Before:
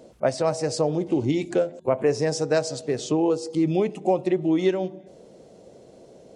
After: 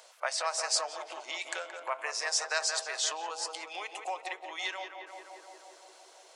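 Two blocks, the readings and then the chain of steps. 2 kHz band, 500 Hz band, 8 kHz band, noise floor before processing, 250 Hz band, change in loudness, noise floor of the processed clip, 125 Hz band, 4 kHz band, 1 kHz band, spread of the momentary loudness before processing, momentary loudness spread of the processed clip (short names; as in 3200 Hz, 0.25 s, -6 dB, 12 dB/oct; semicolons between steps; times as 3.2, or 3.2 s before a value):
+2.5 dB, -18.0 dB, +4.0 dB, -50 dBFS, -35.0 dB, -9.0 dB, -57 dBFS, under -40 dB, +3.5 dB, -4.0 dB, 3 LU, 18 LU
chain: darkening echo 0.174 s, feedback 78%, low-pass 2000 Hz, level -8 dB; compressor 2:1, threshold -27 dBFS, peak gain reduction 7.5 dB; HPF 1000 Hz 24 dB/oct; gain +7 dB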